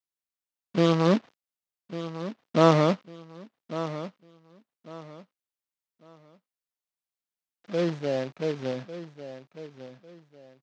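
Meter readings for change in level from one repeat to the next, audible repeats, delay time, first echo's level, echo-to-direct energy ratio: -11.0 dB, 2, 1.149 s, -13.0 dB, -12.5 dB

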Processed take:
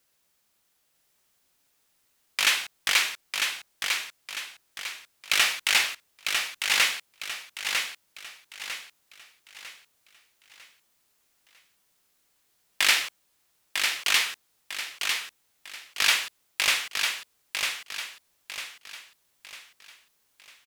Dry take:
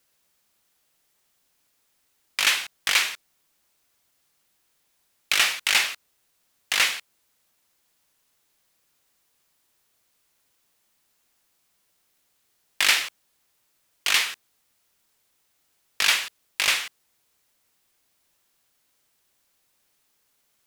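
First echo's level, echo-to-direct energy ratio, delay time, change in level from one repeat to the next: -5.0 dB, -4.5 dB, 0.95 s, -8.0 dB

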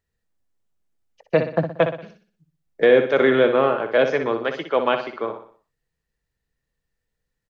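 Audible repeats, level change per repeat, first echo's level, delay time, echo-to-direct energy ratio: 4, -7.5 dB, -8.5 dB, 61 ms, -7.5 dB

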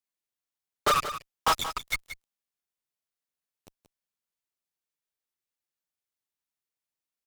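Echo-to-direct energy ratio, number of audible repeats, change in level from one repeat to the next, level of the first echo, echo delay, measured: -11.5 dB, 1, no steady repeat, -11.5 dB, 0.179 s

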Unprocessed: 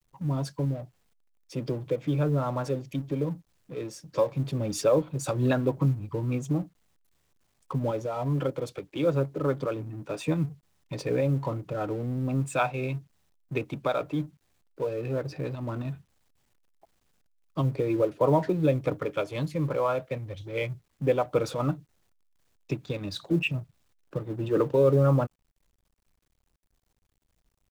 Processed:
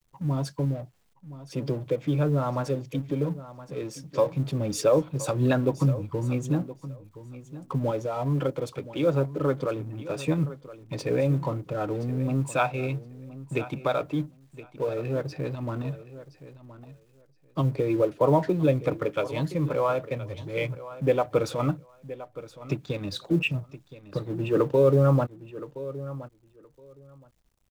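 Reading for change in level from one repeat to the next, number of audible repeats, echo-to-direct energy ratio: -16.0 dB, 2, -15.5 dB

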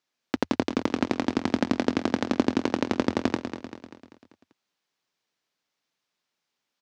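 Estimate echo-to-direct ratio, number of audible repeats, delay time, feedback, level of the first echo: -7.5 dB, 5, 0.195 s, 53%, -9.0 dB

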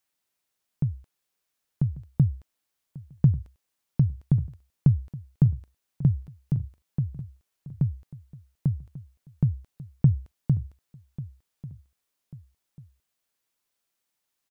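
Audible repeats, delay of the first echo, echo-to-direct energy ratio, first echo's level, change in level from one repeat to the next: 2, 1.142 s, -16.5 dB, -17.0 dB, -8.5 dB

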